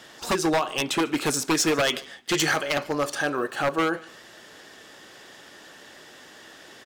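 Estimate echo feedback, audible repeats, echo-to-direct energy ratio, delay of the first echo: 32%, 2, -22.5 dB, 0.146 s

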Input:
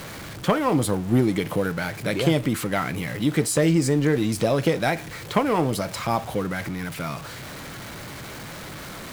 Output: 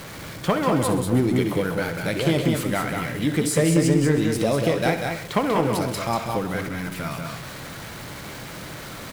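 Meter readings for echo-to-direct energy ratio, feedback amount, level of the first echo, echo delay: -3.0 dB, no steady repeat, -12.5 dB, 66 ms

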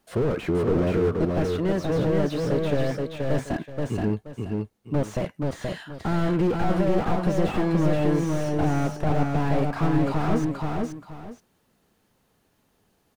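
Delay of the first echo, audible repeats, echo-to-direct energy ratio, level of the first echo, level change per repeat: 0.477 s, 2, -2.5 dB, -3.0 dB, -11.5 dB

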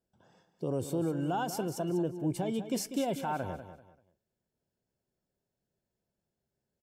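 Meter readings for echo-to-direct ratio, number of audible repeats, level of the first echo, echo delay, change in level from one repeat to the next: -10.5 dB, 3, -11.0 dB, 0.194 s, -11.0 dB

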